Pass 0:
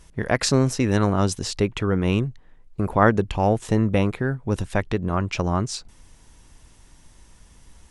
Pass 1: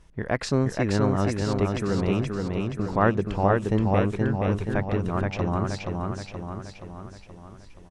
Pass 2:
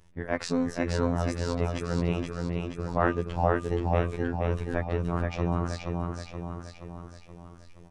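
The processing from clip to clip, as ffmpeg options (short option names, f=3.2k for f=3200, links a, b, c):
-filter_complex "[0:a]lowpass=f=2.6k:p=1,asplit=2[a][b];[b]aecho=0:1:475|950|1425|1900|2375|2850|3325|3800:0.668|0.368|0.202|0.111|0.0612|0.0336|0.0185|0.0102[c];[a][c]amix=inputs=2:normalize=0,volume=-4dB"
-af "afftfilt=real='hypot(re,im)*cos(PI*b)':imag='0':win_size=2048:overlap=0.75,bandreject=f=241.3:t=h:w=4,bandreject=f=482.6:t=h:w=4,bandreject=f=723.9:t=h:w=4,bandreject=f=965.2:t=h:w=4,bandreject=f=1.2065k:t=h:w=4,bandreject=f=1.4478k:t=h:w=4,bandreject=f=1.6891k:t=h:w=4,bandreject=f=1.9304k:t=h:w=4,bandreject=f=2.1717k:t=h:w=4,bandreject=f=2.413k:t=h:w=4,bandreject=f=2.6543k:t=h:w=4,bandreject=f=2.8956k:t=h:w=4,bandreject=f=3.1369k:t=h:w=4,bandreject=f=3.3782k:t=h:w=4,bandreject=f=3.6195k:t=h:w=4,bandreject=f=3.8608k:t=h:w=4"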